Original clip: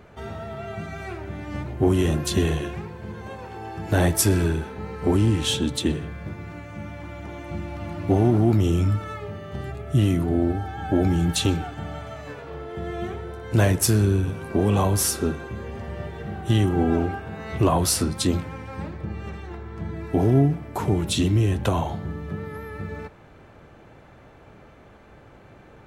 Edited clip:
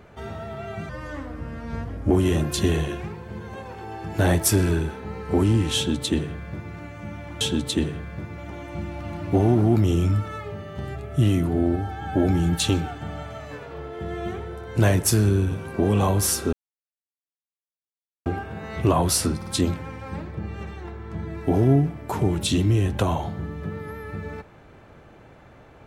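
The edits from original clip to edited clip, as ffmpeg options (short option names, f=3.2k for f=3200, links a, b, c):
-filter_complex "[0:a]asplit=9[a][b][c][d][e][f][g][h][i];[a]atrim=end=0.894[j];[b]atrim=start=0.89:end=1.84,asetpts=PTS-STARTPTS,asetrate=34398,aresample=44100[k];[c]atrim=start=1.836:end=7.142[l];[d]atrim=start=5.488:end=6.462[m];[e]atrim=start=7.138:end=15.29,asetpts=PTS-STARTPTS,afade=t=out:st=8.148:d=0.004:c=hsin[n];[f]atrim=start=15.29:end=17.02,asetpts=PTS-STARTPTS,volume=0[o];[g]atrim=start=17.02:end=18.182,asetpts=PTS-STARTPTS,afade=t=in:d=0.004:c=hsin[p];[h]atrim=start=18.128:end=18.182[q];[i]atrim=start=18.128[r];[j][k]acrossfade=d=0.004:c1=hsin:c2=hsin[s];[s][l]acrossfade=d=0.004:c1=hsin:c2=hsin[t];[t][m]acrossfade=d=0.004:c1=hsin:c2=hsin[u];[n][o][p]concat=n=3:v=0:a=1[v];[u][v]acrossfade=d=0.004:c1=hsin:c2=hsin[w];[w][q]acrossfade=d=0.004:c1=hsin:c2=hsin[x];[x][r]acrossfade=d=0.004:c1=hsin:c2=hsin"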